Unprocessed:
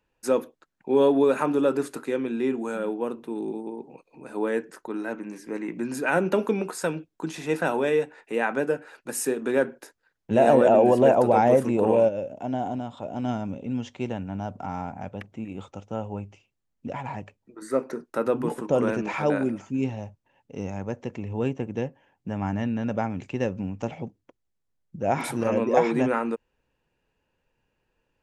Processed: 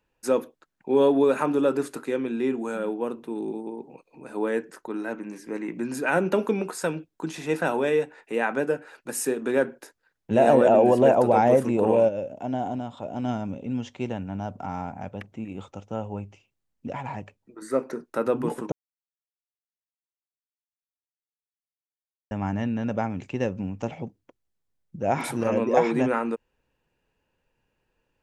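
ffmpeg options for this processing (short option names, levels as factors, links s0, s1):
-filter_complex "[0:a]asplit=3[s0][s1][s2];[s0]atrim=end=18.72,asetpts=PTS-STARTPTS,afade=t=out:st=18.716:d=0.004:c=hsin[s3];[s1]atrim=start=18.72:end=22.31,asetpts=PTS-STARTPTS,volume=0[s4];[s2]atrim=start=22.31,asetpts=PTS-STARTPTS,afade=t=in:d=0.004:c=hsin[s5];[s3][s4][s5]concat=n=3:v=0:a=1"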